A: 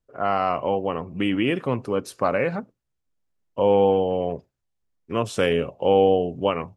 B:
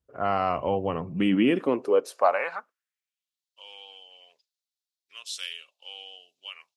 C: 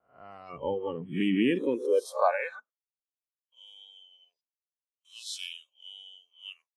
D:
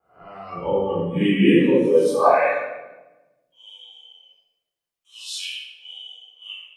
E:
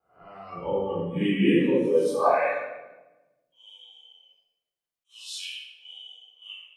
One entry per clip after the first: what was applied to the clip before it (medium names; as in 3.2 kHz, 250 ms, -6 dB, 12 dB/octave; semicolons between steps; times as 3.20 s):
high-pass sweep 62 Hz -> 4 kHz, 0.62–3.44 s; trim -3 dB
reverse spectral sustain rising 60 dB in 0.43 s; gate with hold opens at -49 dBFS; spectral noise reduction 19 dB; trim -4 dB
simulated room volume 540 m³, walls mixed, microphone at 3.9 m
attacks held to a fixed rise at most 390 dB/s; trim -5.5 dB